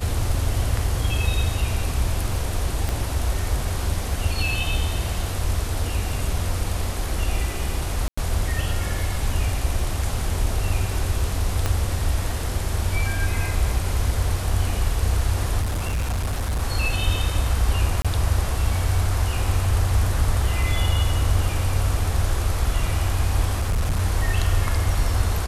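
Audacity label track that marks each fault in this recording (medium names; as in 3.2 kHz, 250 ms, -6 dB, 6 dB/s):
2.890000	2.890000	pop
8.080000	8.180000	dropout 95 ms
11.660000	11.660000	pop -8 dBFS
15.610000	16.630000	clipped -20.5 dBFS
18.020000	18.050000	dropout 26 ms
23.590000	24.000000	clipped -17.5 dBFS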